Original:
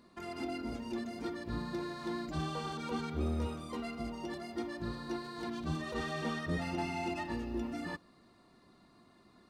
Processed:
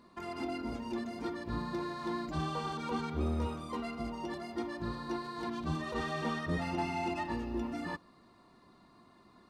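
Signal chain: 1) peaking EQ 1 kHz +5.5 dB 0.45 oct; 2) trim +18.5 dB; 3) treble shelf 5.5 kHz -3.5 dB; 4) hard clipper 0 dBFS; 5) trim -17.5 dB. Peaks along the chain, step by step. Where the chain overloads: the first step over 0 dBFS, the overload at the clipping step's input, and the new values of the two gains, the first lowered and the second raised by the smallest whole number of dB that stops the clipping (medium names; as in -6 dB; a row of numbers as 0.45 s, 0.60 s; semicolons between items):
-22.0 dBFS, -3.5 dBFS, -3.5 dBFS, -3.5 dBFS, -21.0 dBFS; nothing clips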